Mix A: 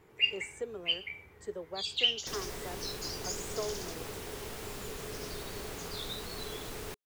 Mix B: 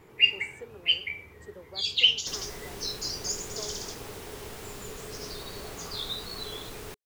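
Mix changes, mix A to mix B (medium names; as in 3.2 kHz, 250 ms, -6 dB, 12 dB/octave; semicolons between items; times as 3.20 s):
speech -6.0 dB; first sound +7.0 dB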